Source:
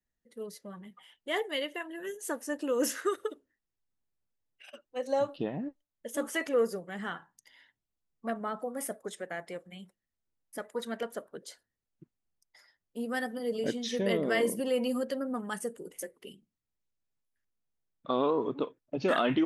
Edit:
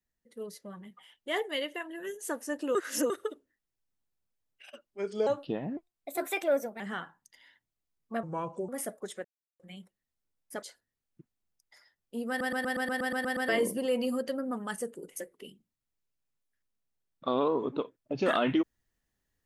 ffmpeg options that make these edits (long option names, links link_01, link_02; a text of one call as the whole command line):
ffmpeg -i in.wav -filter_complex "[0:a]asplit=22[link_01][link_02][link_03][link_04][link_05][link_06][link_07][link_08][link_09][link_10][link_11][link_12][link_13][link_14][link_15][link_16][link_17][link_18][link_19][link_20][link_21][link_22];[link_01]atrim=end=2.752[link_23];[link_02]atrim=start=2.748:end=3.102,asetpts=PTS-STARTPTS,areverse[link_24];[link_03]atrim=start=3.098:end=4.854[link_25];[link_04]atrim=start=4.85:end=5.18,asetpts=PTS-STARTPTS,asetrate=34839,aresample=44100[link_26];[link_05]atrim=start=5.176:end=5.684[link_27];[link_06]atrim=start=5.68:end=6.93,asetpts=PTS-STARTPTS,asetrate=53361,aresample=44100[link_28];[link_07]atrim=start=6.926:end=8.364[link_29];[link_08]atrim=start=8.36:end=8.71,asetpts=PTS-STARTPTS,asetrate=33957,aresample=44100,atrim=end_sample=20045,asetpts=PTS-STARTPTS[link_30];[link_09]atrim=start=8.706:end=9.27,asetpts=PTS-STARTPTS,afade=type=out:start_time=0.56:duration=0.004:curve=hsin[link_31];[link_10]atrim=start=9.27:end=9.62,asetpts=PTS-STARTPTS,volume=0[link_32];[link_11]atrim=start=9.62:end=10.652,asetpts=PTS-STARTPTS,afade=type=in:duration=0.004:curve=hsin[link_33];[link_12]atrim=start=11.448:end=13.232[link_34];[link_13]atrim=start=13.108:end=13.232[link_35];[link_14]atrim=start=13.108:end=13.232[link_36];[link_15]atrim=start=13.108:end=13.232[link_37];[link_16]atrim=start=13.108:end=13.232[link_38];[link_17]atrim=start=13.108:end=13.232[link_39];[link_18]atrim=start=13.108:end=13.232[link_40];[link_19]atrim=start=13.108:end=13.232[link_41];[link_20]atrim=start=13.108:end=13.232[link_42];[link_21]atrim=start=13.108:end=13.232[link_43];[link_22]atrim=start=14.308[link_44];[link_23][link_24]acrossfade=duration=0.004:curve1=hsin:curve2=hsin[link_45];[link_45][link_25]acrossfade=duration=0.004:curve1=hsin:curve2=hsin[link_46];[link_46][link_26]acrossfade=duration=0.004:curve1=hsin:curve2=hsin[link_47];[link_47][link_27]acrossfade=duration=0.004:curve1=hsin:curve2=hsin[link_48];[link_48][link_28]acrossfade=duration=0.004:curve1=hsin:curve2=hsin[link_49];[link_49][link_29]acrossfade=duration=0.004:curve1=hsin:curve2=hsin[link_50];[link_50][link_30]acrossfade=duration=0.004:curve1=hsin:curve2=hsin[link_51];[link_31][link_32][link_33]concat=n=3:v=0:a=1[link_52];[link_51][link_52]acrossfade=duration=0.004:curve1=hsin:curve2=hsin[link_53];[link_53][link_34]acrossfade=duration=0.004:curve1=hsin:curve2=hsin[link_54];[link_54][link_35]acrossfade=duration=0.004:curve1=hsin:curve2=hsin[link_55];[link_55][link_36]acrossfade=duration=0.004:curve1=hsin:curve2=hsin[link_56];[link_56][link_37]acrossfade=duration=0.004:curve1=hsin:curve2=hsin[link_57];[link_57][link_38]acrossfade=duration=0.004:curve1=hsin:curve2=hsin[link_58];[link_58][link_39]acrossfade=duration=0.004:curve1=hsin:curve2=hsin[link_59];[link_59][link_40]acrossfade=duration=0.004:curve1=hsin:curve2=hsin[link_60];[link_60][link_41]acrossfade=duration=0.004:curve1=hsin:curve2=hsin[link_61];[link_61][link_42]acrossfade=duration=0.004:curve1=hsin:curve2=hsin[link_62];[link_62][link_43]acrossfade=duration=0.004:curve1=hsin:curve2=hsin[link_63];[link_63][link_44]acrossfade=duration=0.004:curve1=hsin:curve2=hsin" out.wav